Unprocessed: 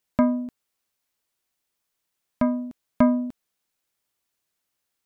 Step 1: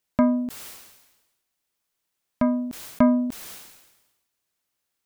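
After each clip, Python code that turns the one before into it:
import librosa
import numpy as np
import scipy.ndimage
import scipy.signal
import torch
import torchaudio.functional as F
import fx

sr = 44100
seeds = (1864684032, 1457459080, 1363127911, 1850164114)

y = fx.sustainer(x, sr, db_per_s=52.0)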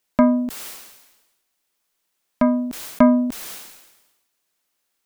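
y = fx.peak_eq(x, sr, hz=91.0, db=-14.5, octaves=0.99)
y = y * 10.0 ** (5.5 / 20.0)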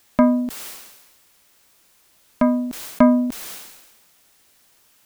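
y = fx.dmg_noise_colour(x, sr, seeds[0], colour='white', level_db=-58.0)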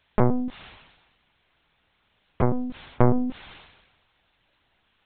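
y = fx.lpc_vocoder(x, sr, seeds[1], excitation='pitch_kept', order=10)
y = y * 10.0 ** (-3.5 / 20.0)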